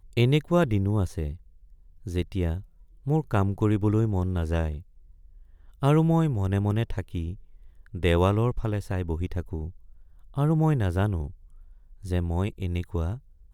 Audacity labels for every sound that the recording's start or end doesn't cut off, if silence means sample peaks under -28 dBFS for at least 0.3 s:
2.070000	2.570000	sound
3.070000	4.770000	sound
5.830000	7.330000	sound
7.950000	9.680000	sound
10.380000	11.270000	sound
12.080000	13.140000	sound